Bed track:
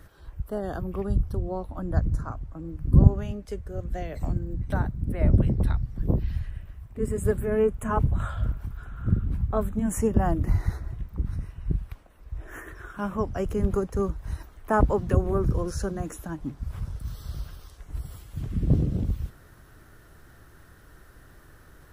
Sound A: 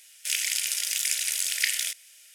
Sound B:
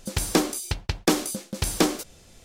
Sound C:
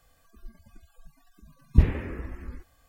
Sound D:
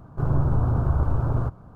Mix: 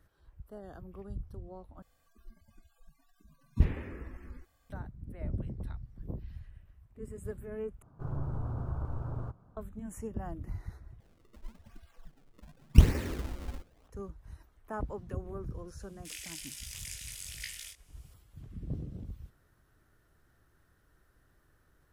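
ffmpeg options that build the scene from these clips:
-filter_complex "[3:a]asplit=2[s0][s1];[0:a]volume=0.158[s2];[s1]acrusher=samples=31:mix=1:aa=0.000001:lfo=1:lforange=49.6:lforate=0.9[s3];[1:a]flanger=delay=17.5:depth=5.2:speed=1.2[s4];[s2]asplit=4[s5][s6][s7][s8];[s5]atrim=end=1.824[s9];[s0]atrim=end=2.88,asetpts=PTS-STARTPTS,volume=0.422[s10];[s6]atrim=start=4.696:end=7.824[s11];[4:a]atrim=end=1.75,asetpts=PTS-STARTPTS,volume=0.2[s12];[s7]atrim=start=9.566:end=11.004[s13];[s3]atrim=end=2.88,asetpts=PTS-STARTPTS,volume=0.944[s14];[s8]atrim=start=13.876[s15];[s4]atrim=end=2.34,asetpts=PTS-STARTPTS,volume=0.211,afade=t=in:d=0.004:c=hsin,afade=t=out:st=2.336:d=0.004:c=hsin,adelay=15800[s16];[s9][s10]acrossfade=d=0.004:c1=hsin:c2=hsin[s17];[s17][s11]acrossfade=d=0.004:c1=hsin:c2=hsin[s18];[s18][s12]acrossfade=d=0.004:c1=hsin:c2=hsin[s19];[s19][s13]acrossfade=d=0.004:c1=hsin:c2=hsin[s20];[s20][s14]acrossfade=d=0.004:c1=hsin:c2=hsin[s21];[s21][s15]acrossfade=d=0.004:c1=hsin:c2=hsin[s22];[s22][s16]amix=inputs=2:normalize=0"

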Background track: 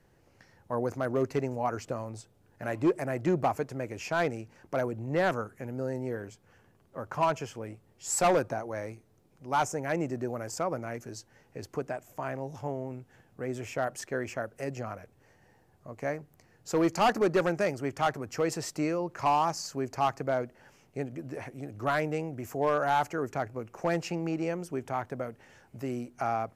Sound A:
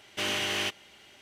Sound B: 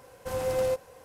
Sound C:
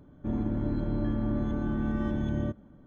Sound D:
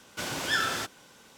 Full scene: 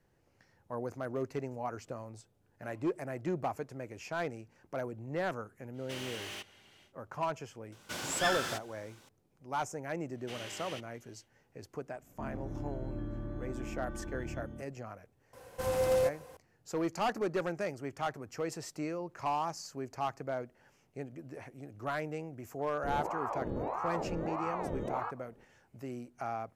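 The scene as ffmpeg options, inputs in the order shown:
-filter_complex "[1:a]asplit=2[s0][s1];[3:a]asplit=2[s2][s3];[0:a]volume=0.422[s4];[s0]asoftclip=type=tanh:threshold=0.0211[s5];[s2]aecho=1:1:166:0.562[s6];[s3]aeval=exprs='val(0)*sin(2*PI*650*n/s+650*0.65/1.6*sin(2*PI*1.6*n/s))':c=same[s7];[s5]atrim=end=1.21,asetpts=PTS-STARTPTS,volume=0.447,afade=t=in:d=0.1,afade=t=out:st=1.11:d=0.1,adelay=5720[s8];[4:a]atrim=end=1.37,asetpts=PTS-STARTPTS,volume=0.531,afade=t=in:d=0.004:c=hsin,afade=t=out:st=1.366:d=0.004:c=hsin,adelay=7720[s9];[s1]atrim=end=1.21,asetpts=PTS-STARTPTS,volume=0.168,afade=t=in:d=0.1,afade=t=out:st=1.11:d=0.1,adelay=445410S[s10];[s6]atrim=end=2.86,asetpts=PTS-STARTPTS,volume=0.266,afade=t=in:d=0.004:c=hsin,afade=t=out:st=2.856:d=0.004:c=hsin,adelay=11940[s11];[2:a]atrim=end=1.04,asetpts=PTS-STARTPTS,volume=0.891,afade=t=in:d=0.004:c=hsin,afade=t=out:st=1.036:d=0.004:c=hsin,adelay=15330[s12];[s7]atrim=end=2.86,asetpts=PTS-STARTPTS,volume=0.562,afade=t=in:d=0.004:c=hsin,afade=t=out:st=2.856:d=0.004:c=hsin,adelay=22590[s13];[s4][s8][s9][s10][s11][s12][s13]amix=inputs=7:normalize=0"

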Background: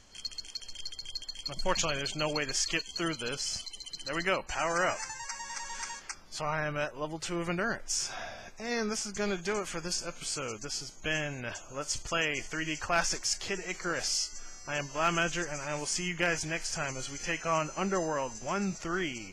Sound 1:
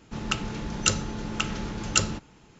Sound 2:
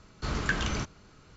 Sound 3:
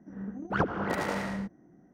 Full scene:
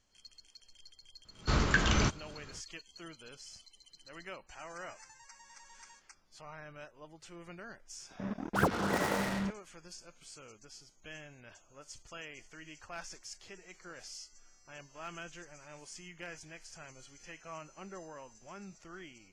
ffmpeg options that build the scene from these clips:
-filter_complex "[0:a]volume=0.15[s0];[2:a]dynaudnorm=f=100:g=3:m=5.01[s1];[3:a]acrusher=bits=5:mix=0:aa=0.5[s2];[s1]atrim=end=1.36,asetpts=PTS-STARTPTS,volume=0.335,afade=t=in:d=0.004:c=hsin,afade=t=out:st=1.356:d=0.004:c=hsin,adelay=1250[s3];[s2]atrim=end=1.93,asetpts=PTS-STARTPTS,volume=0.891,afade=t=in:d=0.004:c=hsin,afade=t=out:st=1.926:d=0.004:c=hsin,adelay=8030[s4];[s0][s3][s4]amix=inputs=3:normalize=0"

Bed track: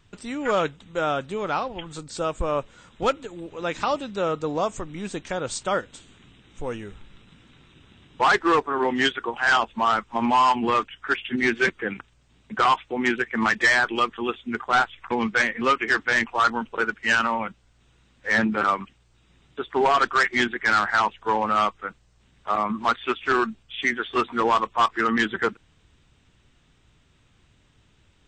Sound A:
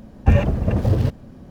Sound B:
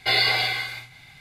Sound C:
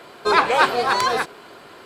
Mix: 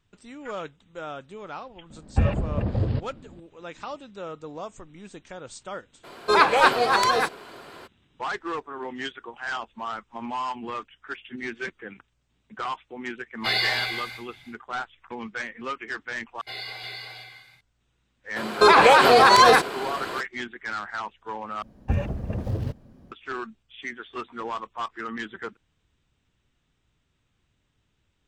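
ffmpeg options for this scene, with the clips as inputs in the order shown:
-filter_complex "[1:a]asplit=2[s0][s1];[3:a]asplit=2[s2][s3];[2:a]asplit=2[s4][s5];[0:a]volume=0.266[s6];[s0]aresample=11025,aresample=44100[s7];[s5]aecho=1:1:351:0.668[s8];[s3]alimiter=level_in=5.01:limit=0.891:release=50:level=0:latency=1[s9];[s6]asplit=3[s10][s11][s12];[s10]atrim=end=16.414[s13];[s8]atrim=end=1.2,asetpts=PTS-STARTPTS,volume=0.158[s14];[s11]atrim=start=17.606:end=21.624[s15];[s1]atrim=end=1.5,asetpts=PTS-STARTPTS,volume=0.316[s16];[s12]atrim=start=23.116[s17];[s7]atrim=end=1.5,asetpts=PTS-STARTPTS,volume=0.473,afade=t=in:d=0.004:c=hsin,afade=t=out:st=1.496:d=0.004:c=hsin,adelay=1900[s18];[s2]atrim=end=1.85,asetpts=PTS-STARTPTS,volume=0.891,afade=t=in:d=0.02,afade=t=out:st=1.83:d=0.02,adelay=6030[s19];[s4]atrim=end=1.2,asetpts=PTS-STARTPTS,volume=0.631,afade=t=in:d=0.1,afade=t=out:st=1.1:d=0.1,adelay=13380[s20];[s9]atrim=end=1.85,asetpts=PTS-STARTPTS,volume=0.631,afade=t=in:d=0.004:c=hsin,afade=t=out:st=1.846:d=0.004:c=hsin,adelay=18360[s21];[s13][s14]acrossfade=d=0.004:c1=hsin:c2=hsin[s22];[s22][s15]acrossfade=d=0.004:c1=hsin:c2=hsin[s23];[s23][s16]acrossfade=d=0.004:c1=hsin:c2=hsin[s24];[s24][s17]acrossfade=d=0.004:c1=hsin:c2=hsin[s25];[s25][s18][s19][s20][s21]amix=inputs=5:normalize=0"

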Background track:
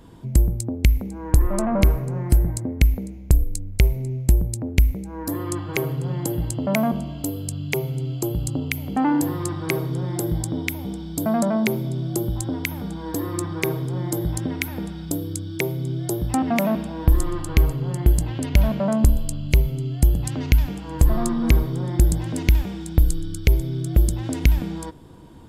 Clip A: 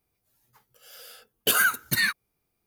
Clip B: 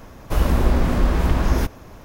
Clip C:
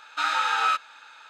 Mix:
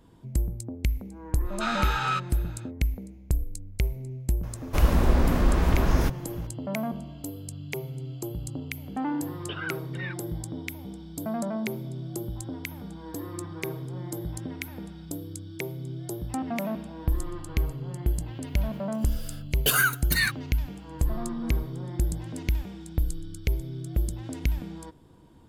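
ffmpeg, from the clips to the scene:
-filter_complex "[1:a]asplit=2[s0][s1];[0:a]volume=0.335[s2];[s0]aresample=8000,aresample=44100[s3];[3:a]atrim=end=1.29,asetpts=PTS-STARTPTS,volume=0.596,afade=t=in:d=0.1,afade=t=out:st=1.19:d=0.1,adelay=1430[s4];[2:a]atrim=end=2.04,asetpts=PTS-STARTPTS,volume=0.668,afade=t=in:d=0.004:c=hsin,afade=t=out:st=2.036:d=0.004:c=hsin,adelay=4430[s5];[s3]atrim=end=2.66,asetpts=PTS-STARTPTS,volume=0.224,afade=t=in:d=0.004:c=hsin,afade=t=out:st=2.656:d=0.004:c=hsin,adelay=353682S[s6];[s1]atrim=end=2.66,asetpts=PTS-STARTPTS,volume=0.891,afade=t=in:d=0.004:c=hsin,afade=t=out:st=2.656:d=0.004:c=hsin,adelay=18190[s7];[s2][s4][s5][s6][s7]amix=inputs=5:normalize=0"

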